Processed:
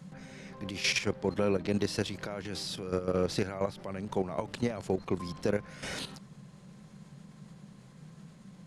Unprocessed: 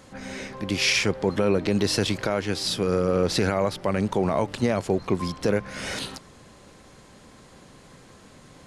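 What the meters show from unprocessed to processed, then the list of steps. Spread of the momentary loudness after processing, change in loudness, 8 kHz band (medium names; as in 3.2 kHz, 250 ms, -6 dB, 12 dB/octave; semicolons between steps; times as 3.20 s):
22 LU, -8.0 dB, -9.0 dB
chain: level held to a coarse grid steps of 11 dB; band noise 130–210 Hz -46 dBFS; trim -5 dB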